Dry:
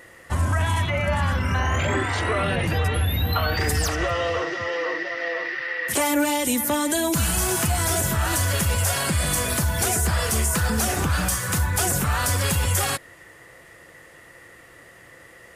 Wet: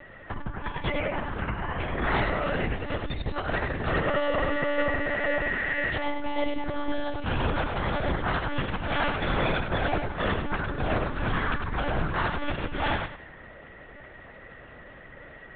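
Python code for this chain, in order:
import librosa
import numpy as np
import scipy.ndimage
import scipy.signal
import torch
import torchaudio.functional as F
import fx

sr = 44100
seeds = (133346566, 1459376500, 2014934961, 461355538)

p1 = fx.high_shelf(x, sr, hz=2600.0, db=-10.0)
p2 = fx.over_compress(p1, sr, threshold_db=-26.0, ratio=-0.5)
p3 = fx.low_shelf(p2, sr, hz=340.0, db=-3.0)
p4 = p3 + fx.echo_feedback(p3, sr, ms=96, feedback_pct=28, wet_db=-5, dry=0)
y = fx.lpc_monotone(p4, sr, seeds[0], pitch_hz=290.0, order=10)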